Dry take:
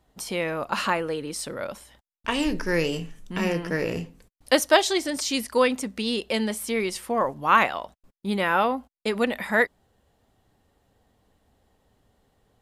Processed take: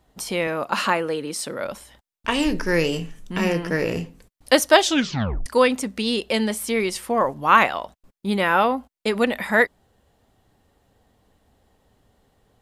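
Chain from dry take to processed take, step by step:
0:00.47–0:01.65: high-pass filter 140 Hz 12 dB per octave
0:04.82: tape stop 0.64 s
level +3.5 dB

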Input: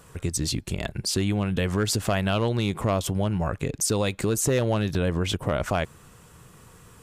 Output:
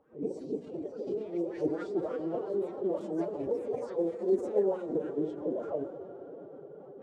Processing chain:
peak hold with a rise ahead of every peak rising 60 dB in 0.42 s
LFO wah 3.4 Hz 320–1,400 Hz, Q 6.8
delay with pitch and tempo change per echo 109 ms, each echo +4 semitones, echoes 2, each echo −6 dB
octave-band graphic EQ 250/500/1,000/2,000/8,000 Hz +9/+9/−7/−8/+4 dB
on a send at −9.5 dB: convolution reverb RT60 5.6 s, pre-delay 118 ms
on the sum: phase-vocoder pitch shift with formants kept +9 semitones
low-pass that shuts in the quiet parts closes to 2,900 Hz, open at −23 dBFS
parametric band 67 Hz +13.5 dB 2.8 octaves
hum removal 60.91 Hz, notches 20
reversed playback
upward compression, threshold −39 dBFS
reversed playback
level −4 dB

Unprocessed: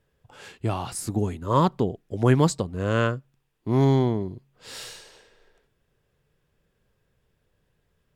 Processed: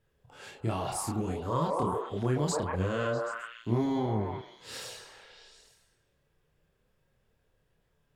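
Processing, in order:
echo through a band-pass that steps 130 ms, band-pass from 610 Hz, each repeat 0.7 octaves, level −2 dB
brickwall limiter −17.5 dBFS, peak gain reduction 10 dB
multi-voice chorus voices 2, 0.53 Hz, delay 29 ms, depth 3.9 ms

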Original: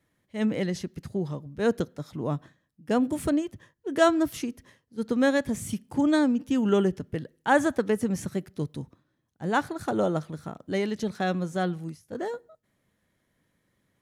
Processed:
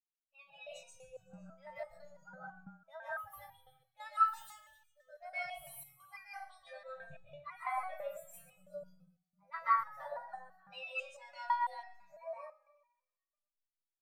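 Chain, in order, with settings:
spectral dynamics exaggerated over time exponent 2
reversed playback
downward compressor 20 to 1, threshold −32 dBFS, peak gain reduction 17 dB
reversed playback
pitch shifter +4.5 semitones
drawn EQ curve 170 Hz 0 dB, 990 Hz +9 dB, 5,400 Hz −9 dB
brick-wall band-stop 190–510 Hz
flat-topped bell 750 Hz −8.5 dB 1.1 octaves
mains-hum notches 60/120/180 Hz
on a send: delay with a high-pass on its return 124 ms, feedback 51%, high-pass 1,500 Hz, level −14.5 dB
on the sum: comb and all-pass reverb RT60 0.51 s, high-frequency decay 0.45×, pre-delay 105 ms, DRR −7.5 dB
step-sequenced resonator 6 Hz 200–480 Hz
level +8.5 dB

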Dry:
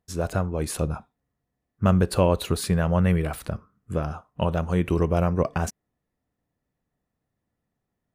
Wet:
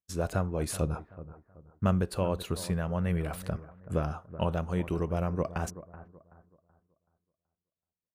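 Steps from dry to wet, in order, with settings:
noise gate −44 dBFS, range −20 dB
speech leveller within 4 dB 0.5 s
on a send: bucket-brigade delay 378 ms, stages 4,096, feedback 33%, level −15 dB
on the sum: level −7 dB

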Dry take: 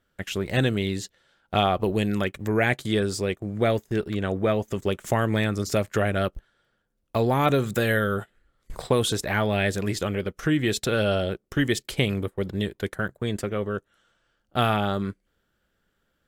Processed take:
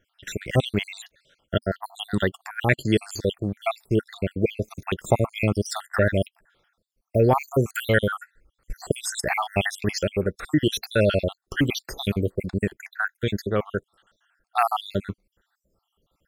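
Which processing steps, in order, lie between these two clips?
time-frequency cells dropped at random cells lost 68%
parametric band 240 Hz −4 dB 0.26 octaves
level +5.5 dB

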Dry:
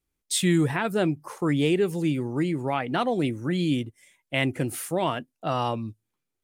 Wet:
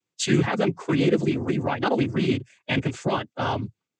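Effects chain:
loose part that buzzes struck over −27 dBFS, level −27 dBFS
cochlear-implant simulation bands 16
phase-vocoder stretch with locked phases 0.62×
level +3.5 dB

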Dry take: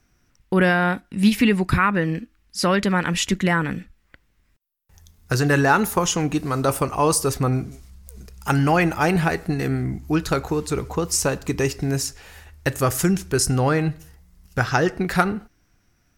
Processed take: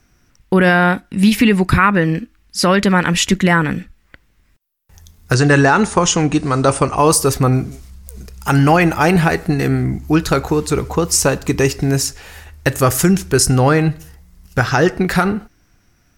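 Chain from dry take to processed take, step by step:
0:05.34–0:06.98: linear-phase brick-wall low-pass 9,900 Hz
boost into a limiter +8 dB
level −1 dB

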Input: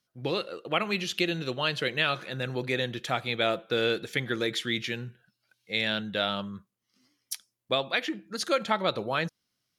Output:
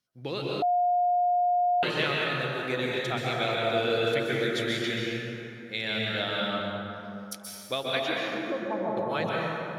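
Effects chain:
0:08.34–0:08.97: Chebyshev low-pass with heavy ripple 1,100 Hz, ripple 3 dB
dense smooth reverb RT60 3.1 s, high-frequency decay 0.5×, pre-delay 115 ms, DRR −4.5 dB
0:00.62–0:01.83: beep over 712 Hz −16.5 dBFS
level −4.5 dB

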